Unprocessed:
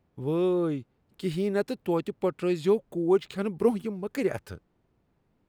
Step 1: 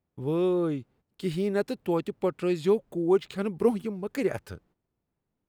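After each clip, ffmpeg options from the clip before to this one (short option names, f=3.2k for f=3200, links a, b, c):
-af "agate=range=-12dB:threshold=-59dB:ratio=16:detection=peak"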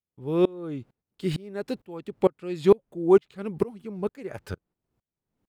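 -af "highshelf=f=6.8k:g=-4.5,aeval=exprs='val(0)*pow(10,-28*if(lt(mod(-2.2*n/s,1),2*abs(-2.2)/1000),1-mod(-2.2*n/s,1)/(2*abs(-2.2)/1000),(mod(-2.2*n/s,1)-2*abs(-2.2)/1000)/(1-2*abs(-2.2)/1000))/20)':c=same,volume=8dB"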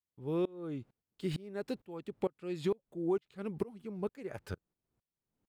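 -af "acompressor=threshold=-24dB:ratio=4,volume=-6dB"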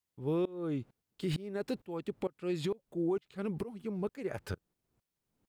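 -af "alimiter=level_in=6dB:limit=-24dB:level=0:latency=1:release=24,volume=-6dB,volume=5dB"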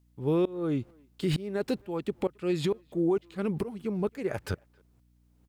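-filter_complex "[0:a]aeval=exprs='val(0)+0.000355*(sin(2*PI*60*n/s)+sin(2*PI*2*60*n/s)/2+sin(2*PI*3*60*n/s)/3+sin(2*PI*4*60*n/s)/4+sin(2*PI*5*60*n/s)/5)':c=same,asplit=2[a][b];[b]adelay=270,highpass=300,lowpass=3.4k,asoftclip=type=hard:threshold=-34.5dB,volume=-27dB[c];[a][c]amix=inputs=2:normalize=0,volume=6dB"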